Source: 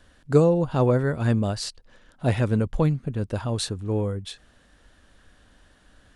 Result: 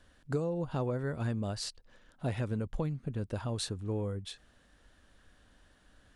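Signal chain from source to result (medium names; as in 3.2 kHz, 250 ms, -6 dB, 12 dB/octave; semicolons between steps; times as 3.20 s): compression 5:1, threshold -23 dBFS, peak gain reduction 11 dB; trim -6.5 dB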